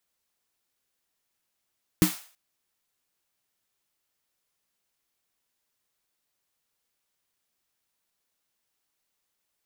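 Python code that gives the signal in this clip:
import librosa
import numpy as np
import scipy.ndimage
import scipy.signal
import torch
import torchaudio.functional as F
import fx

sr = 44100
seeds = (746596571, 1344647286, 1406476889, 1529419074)

y = fx.drum_snare(sr, seeds[0], length_s=0.33, hz=180.0, second_hz=310.0, noise_db=-9, noise_from_hz=640.0, decay_s=0.15, noise_decay_s=0.45)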